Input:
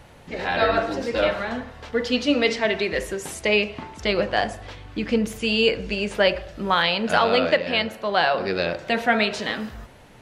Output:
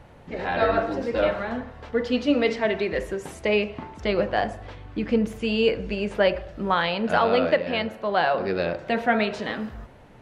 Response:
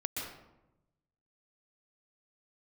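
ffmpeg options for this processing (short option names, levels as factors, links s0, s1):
-af "highshelf=f=2600:g=-12"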